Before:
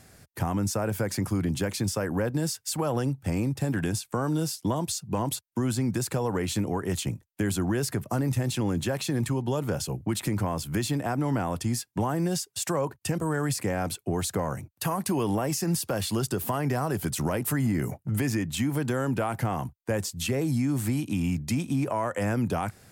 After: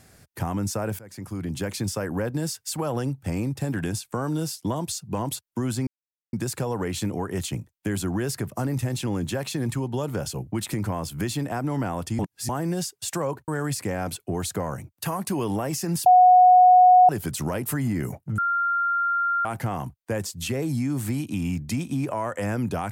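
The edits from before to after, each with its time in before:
0.99–1.71 s: fade in, from -21.5 dB
5.87 s: insert silence 0.46 s
11.73–12.03 s: reverse
13.02–13.27 s: delete
15.85–16.88 s: bleep 731 Hz -10 dBFS
18.17–19.24 s: bleep 1.39 kHz -20.5 dBFS

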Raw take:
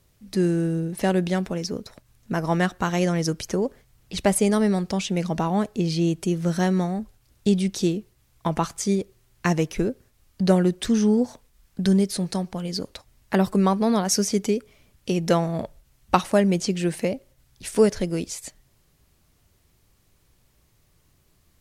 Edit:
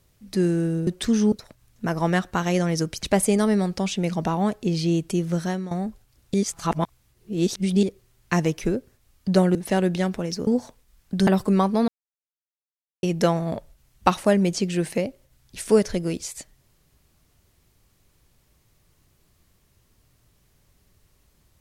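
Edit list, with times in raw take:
0.87–1.79 s: swap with 10.68–11.13 s
3.50–4.16 s: delete
6.42–6.84 s: fade out, to -14.5 dB
7.47–8.96 s: reverse
11.93–13.34 s: delete
13.95–15.10 s: mute

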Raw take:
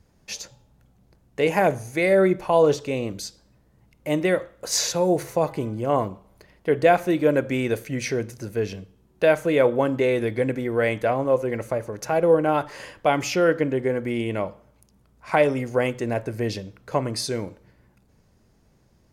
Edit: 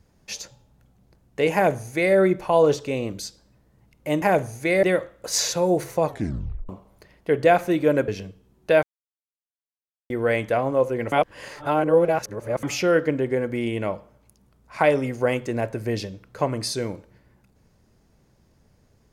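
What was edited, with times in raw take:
1.54–2.15 s: copy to 4.22 s
5.45 s: tape stop 0.63 s
7.47–8.61 s: delete
9.36–10.63 s: mute
11.65–13.16 s: reverse

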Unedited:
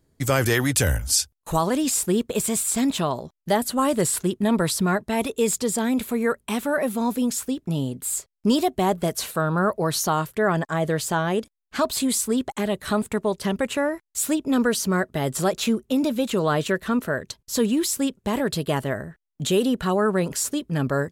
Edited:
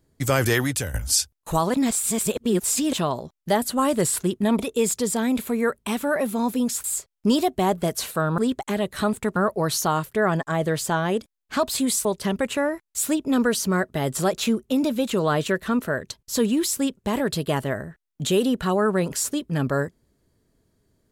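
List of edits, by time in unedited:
0.58–0.94 s: fade out, to -15 dB
1.74–2.93 s: reverse
4.59–5.21 s: delete
7.46–8.04 s: delete
12.27–13.25 s: move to 9.58 s

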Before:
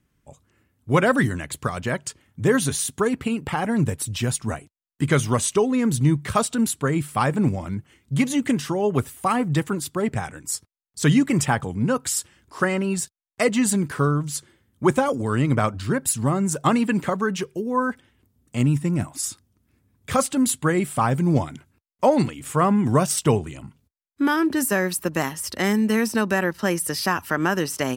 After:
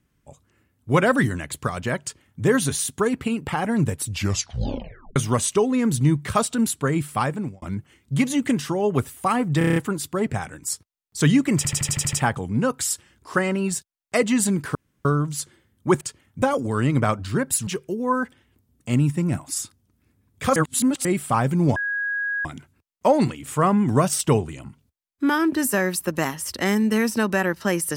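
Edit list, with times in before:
2.02–2.43 s: copy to 14.97 s
4.08 s: tape stop 1.08 s
7.13–7.62 s: fade out
9.58 s: stutter 0.03 s, 7 plays
11.39 s: stutter 0.08 s, 8 plays
14.01 s: insert room tone 0.30 s
16.22–17.34 s: delete
20.23–20.72 s: reverse
21.43 s: add tone 1.65 kHz -22.5 dBFS 0.69 s

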